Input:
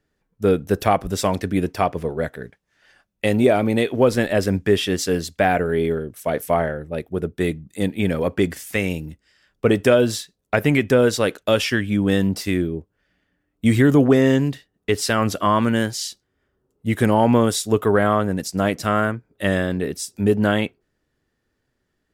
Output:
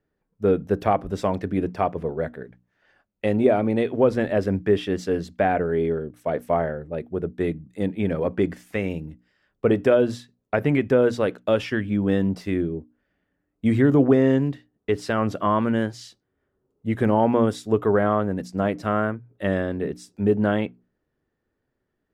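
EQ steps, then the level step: LPF 1100 Hz 6 dB/oct; low shelf 110 Hz -5 dB; notches 60/120/180/240/300 Hz; -1.0 dB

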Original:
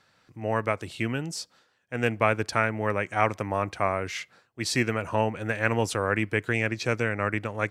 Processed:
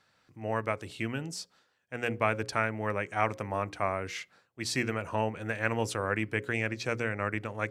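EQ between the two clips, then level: notches 60/120/180/240/300/360/420/480/540 Hz; -4.5 dB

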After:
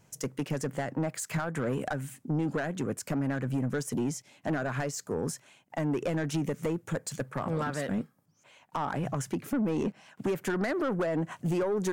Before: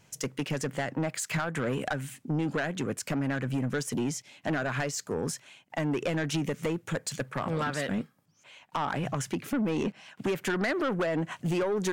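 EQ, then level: bell 3100 Hz -7.5 dB 1.9 oct; 0.0 dB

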